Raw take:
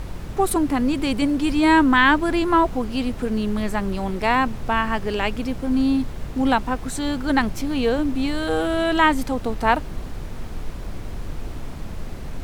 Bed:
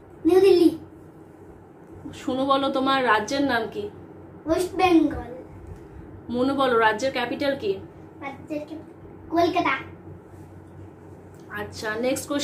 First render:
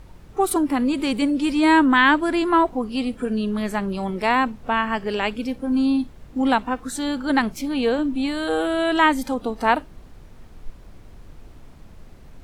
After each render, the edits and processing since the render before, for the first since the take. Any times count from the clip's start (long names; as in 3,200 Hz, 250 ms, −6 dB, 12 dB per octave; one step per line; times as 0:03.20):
noise reduction from a noise print 13 dB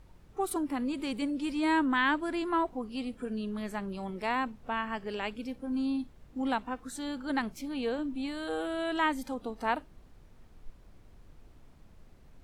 level −11.5 dB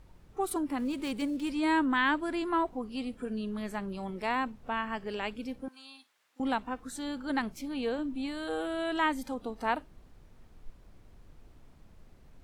0:00.78–0:01.49: gap after every zero crossing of 0.057 ms
0:05.68–0:06.40: high-pass filter 1,400 Hz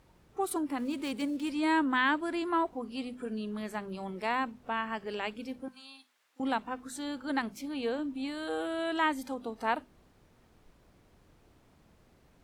high-pass filter 120 Hz 6 dB per octave
mains-hum notches 50/100/150/200/250 Hz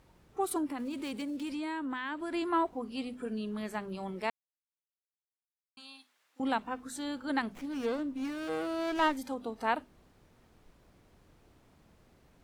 0:00.66–0:02.34: downward compressor, threshold −33 dBFS
0:04.30–0:05.77: silence
0:07.52–0:09.17: windowed peak hold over 9 samples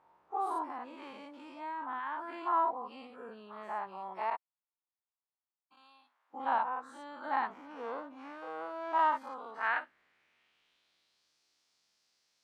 every bin's largest magnitude spread in time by 120 ms
band-pass filter sweep 960 Hz → 5,100 Hz, 0:09.05–0:11.35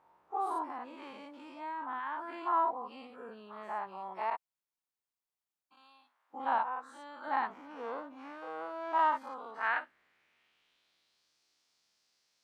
0:06.62–0:07.27: low-shelf EQ 400 Hz −6.5 dB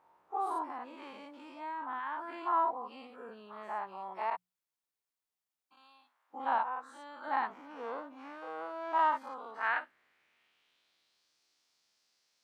low-shelf EQ 180 Hz −3.5 dB
mains-hum notches 60/120/180 Hz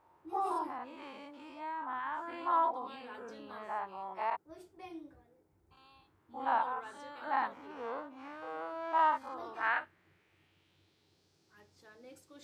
mix in bed −30 dB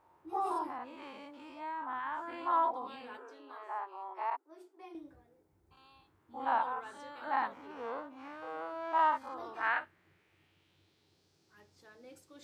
0:03.17–0:04.95: Chebyshev high-pass with heavy ripple 260 Hz, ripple 6 dB